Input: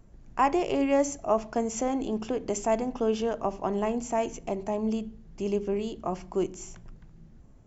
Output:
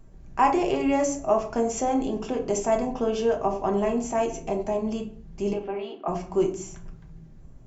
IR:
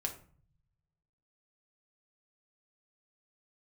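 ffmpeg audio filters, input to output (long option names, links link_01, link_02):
-filter_complex "[0:a]asettb=1/sr,asplit=3[link_01][link_02][link_03];[link_01]atrim=end=5.534[link_04];[link_02]atrim=start=5.53:end=6.08,asetpts=PTS-STARTPTS,afade=type=in:duration=0.004:curve=qsin,afade=type=out:start_time=0.546:duration=0.004:curve=qsin,highpass=frequency=300:width=0.5412,highpass=frequency=300:width=1.3066,equalizer=frequency=430:width_type=q:width=4:gain=-10,equalizer=frequency=770:width_type=q:width=4:gain=7,equalizer=frequency=1300:width_type=q:width=4:gain=4,lowpass=frequency=3500:width=0.5412,lowpass=frequency=3500:width=1.3066[link_05];[link_03]atrim=start=6.076[link_06];[link_04][link_05]acrossfade=duration=0.004:curve1=hsin:curve2=qsin[link_07];[link_07][link_06]acrossfade=duration=0.004:curve1=qsin:curve2=hsin[link_08];[1:a]atrim=start_sample=2205,afade=type=out:start_time=0.38:duration=0.01,atrim=end_sample=17199[link_09];[link_08][link_09]afir=irnorm=-1:irlink=0,volume=2dB"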